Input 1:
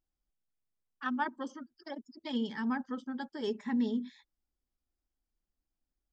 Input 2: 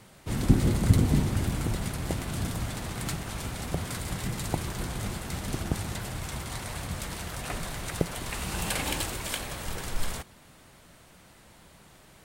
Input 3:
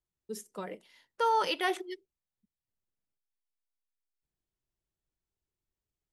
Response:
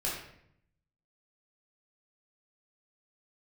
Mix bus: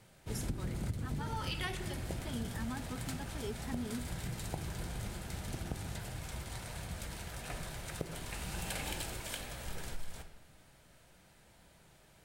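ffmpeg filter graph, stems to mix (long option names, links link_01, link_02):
-filter_complex "[0:a]volume=-7dB,asplit=2[link_01][link_02];[1:a]bandreject=frequency=1100:width=9.7,volume=-10dB,asplit=2[link_03][link_04];[link_04]volume=-11.5dB[link_05];[2:a]equalizer=frequency=560:width_type=o:width=2:gain=-11.5,volume=2dB,asplit=2[link_06][link_07];[link_07]volume=-13dB[link_08];[link_02]apad=whole_len=270131[link_09];[link_06][link_09]sidechaincompress=threshold=-48dB:ratio=8:attack=16:release=220[link_10];[3:a]atrim=start_sample=2205[link_11];[link_05][link_08]amix=inputs=2:normalize=0[link_12];[link_12][link_11]afir=irnorm=-1:irlink=0[link_13];[link_01][link_03][link_10][link_13]amix=inputs=4:normalize=0,acompressor=threshold=-33dB:ratio=16"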